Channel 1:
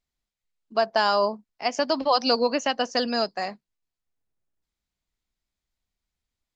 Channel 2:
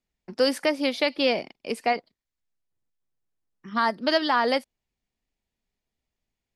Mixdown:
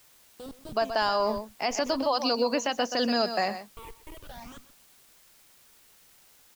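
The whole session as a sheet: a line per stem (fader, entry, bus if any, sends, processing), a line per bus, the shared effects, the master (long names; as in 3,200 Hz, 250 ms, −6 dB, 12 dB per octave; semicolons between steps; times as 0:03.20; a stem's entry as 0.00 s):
+1.5 dB, 0.00 s, no send, echo send −13 dB, speech leveller 0.5 s; bit-depth reduction 10 bits, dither triangular
−11.5 dB, 0.00 s, no send, echo send −16 dB, pitch vibrato 1.8 Hz 48 cents; comparator with hysteresis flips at −21.5 dBFS; all-pass phaser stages 8, 0.44 Hz, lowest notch 190–2,200 Hz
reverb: not used
echo: single-tap delay 126 ms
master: brickwall limiter −16 dBFS, peak gain reduction 10 dB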